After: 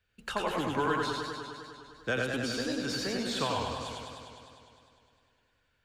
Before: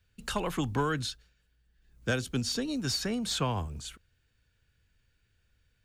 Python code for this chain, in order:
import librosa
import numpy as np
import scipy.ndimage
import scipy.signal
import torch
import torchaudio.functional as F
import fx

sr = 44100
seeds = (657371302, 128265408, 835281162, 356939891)

y = fx.bass_treble(x, sr, bass_db=-10, treble_db=-9)
y = y + 10.0 ** (-4.5 / 20.0) * np.pad(y, (int(88 * sr / 1000.0), 0))[:len(y)]
y = fx.echo_warbled(y, sr, ms=101, feedback_pct=76, rate_hz=2.8, cents=93, wet_db=-5.5)